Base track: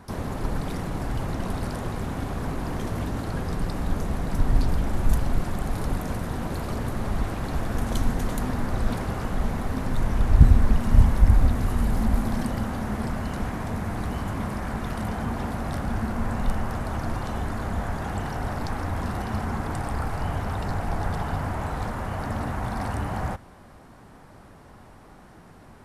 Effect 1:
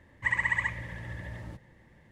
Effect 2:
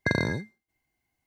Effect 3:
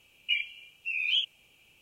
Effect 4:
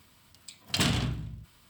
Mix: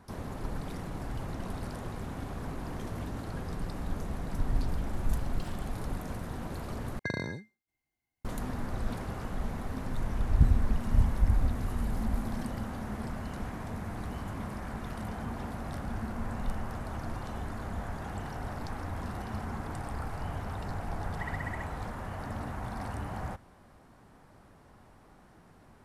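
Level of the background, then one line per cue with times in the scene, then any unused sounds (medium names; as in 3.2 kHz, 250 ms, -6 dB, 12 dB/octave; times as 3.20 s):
base track -8.5 dB
4.66 s: add 4 -17.5 dB + compression, threshold -30 dBFS
6.99 s: replace with 2 -8.5 dB
20.95 s: add 1 -14 dB
not used: 3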